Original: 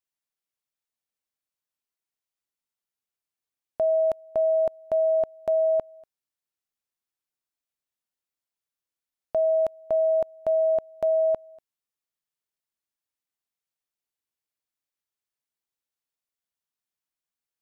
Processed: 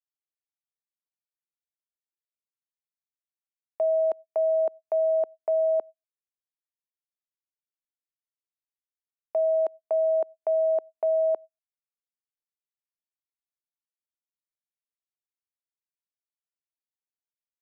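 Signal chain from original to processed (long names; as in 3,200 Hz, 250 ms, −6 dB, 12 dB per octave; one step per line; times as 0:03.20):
low-pass filter 1,100 Hz 6 dB per octave
noise gate −36 dBFS, range −49 dB
high-pass filter 350 Hz 24 dB per octave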